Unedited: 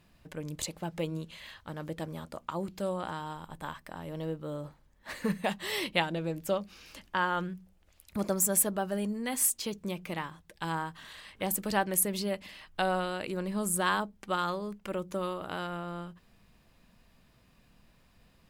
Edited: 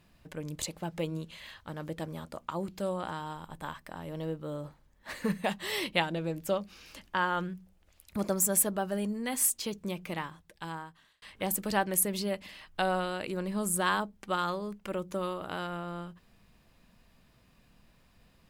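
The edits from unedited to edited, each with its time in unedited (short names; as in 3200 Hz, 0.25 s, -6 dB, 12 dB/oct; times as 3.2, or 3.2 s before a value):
10.22–11.22 fade out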